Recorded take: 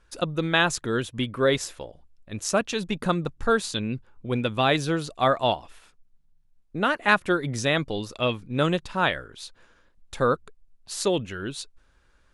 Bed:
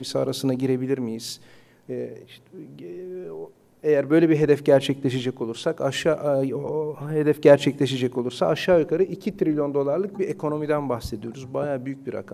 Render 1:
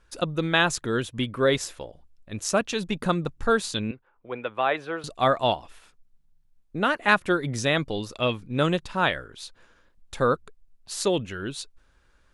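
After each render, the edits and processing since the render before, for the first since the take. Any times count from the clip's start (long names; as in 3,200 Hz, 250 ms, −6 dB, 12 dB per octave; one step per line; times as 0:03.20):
0:03.91–0:05.04: three-way crossover with the lows and the highs turned down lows −19 dB, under 420 Hz, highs −23 dB, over 2,600 Hz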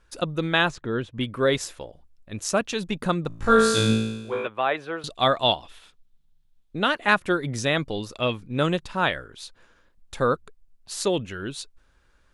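0:00.70–0:01.21: head-to-tape spacing loss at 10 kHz 22 dB
0:03.28–0:04.47: flutter between parallel walls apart 3.1 metres, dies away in 1 s
0:05.04–0:07.04: parametric band 3,500 Hz +9 dB 0.6 octaves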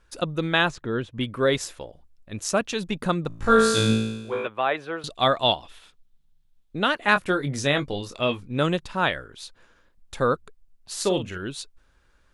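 0:07.13–0:08.48: double-tracking delay 21 ms −8 dB
0:10.95–0:11.38: double-tracking delay 43 ms −8.5 dB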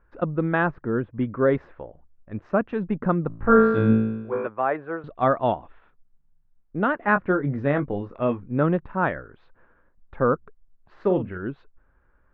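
low-pass filter 1,700 Hz 24 dB per octave
dynamic equaliser 230 Hz, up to +4 dB, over −35 dBFS, Q 0.84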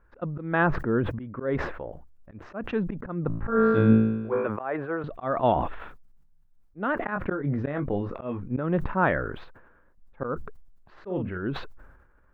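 volume swells 229 ms
level that may fall only so fast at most 56 dB per second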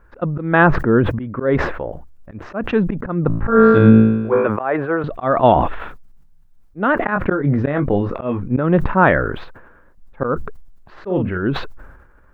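level +10.5 dB
brickwall limiter −1 dBFS, peak gain reduction 3 dB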